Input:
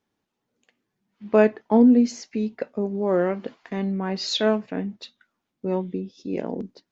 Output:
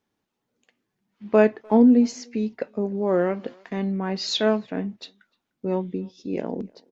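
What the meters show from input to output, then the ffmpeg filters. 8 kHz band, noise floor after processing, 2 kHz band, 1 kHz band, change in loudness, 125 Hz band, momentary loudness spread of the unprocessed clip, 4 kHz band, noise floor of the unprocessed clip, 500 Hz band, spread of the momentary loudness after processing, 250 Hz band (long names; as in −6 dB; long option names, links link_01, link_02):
can't be measured, −80 dBFS, 0.0 dB, 0.0 dB, 0.0 dB, 0.0 dB, 16 LU, 0.0 dB, −81 dBFS, 0.0 dB, 16 LU, 0.0 dB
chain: -filter_complex "[0:a]asplit=2[link_01][link_02];[link_02]adelay=300,highpass=300,lowpass=3400,asoftclip=type=hard:threshold=-13.5dB,volume=-27dB[link_03];[link_01][link_03]amix=inputs=2:normalize=0"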